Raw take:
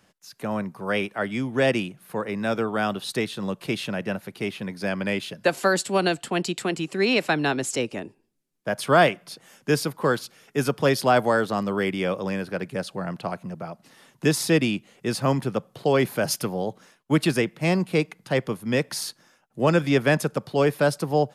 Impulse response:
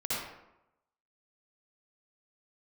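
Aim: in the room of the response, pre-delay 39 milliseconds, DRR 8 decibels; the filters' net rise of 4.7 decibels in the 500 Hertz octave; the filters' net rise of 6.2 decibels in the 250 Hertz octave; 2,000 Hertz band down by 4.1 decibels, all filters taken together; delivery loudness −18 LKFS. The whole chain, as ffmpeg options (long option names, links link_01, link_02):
-filter_complex "[0:a]equalizer=frequency=250:width_type=o:gain=7,equalizer=frequency=500:width_type=o:gain=4,equalizer=frequency=2000:width_type=o:gain=-6,asplit=2[link_01][link_02];[1:a]atrim=start_sample=2205,adelay=39[link_03];[link_02][link_03]afir=irnorm=-1:irlink=0,volume=-14.5dB[link_04];[link_01][link_04]amix=inputs=2:normalize=0,volume=2.5dB"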